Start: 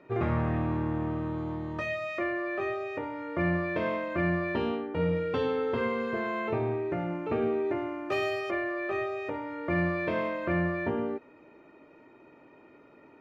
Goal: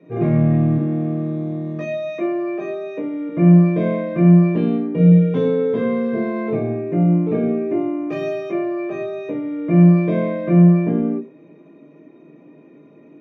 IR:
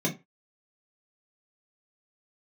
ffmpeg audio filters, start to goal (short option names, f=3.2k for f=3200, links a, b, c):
-filter_complex "[0:a]asettb=1/sr,asplit=3[a][b][c];[a]atrim=end=0.784[d];[b]atrim=start=0.78:end=3.29,asetpts=PTS-STARTPTS,afade=t=in:d=0.004:c=qsin,afade=t=out:st=2.506:d=0.004:c=qsin,highpass=f=170:w=0.5412,highpass=f=170:w=1.3066[e];[c]atrim=start=3.286[f];[d][e]acrossfade=d=0.004:c1=hsin:c2=qsin[g];[g][f]acrossfade=d=0.004:c1=qsin:c2=hsin[h];[1:a]atrim=start_sample=2205[i];[h][i]afir=irnorm=-1:irlink=0,volume=-6.5dB"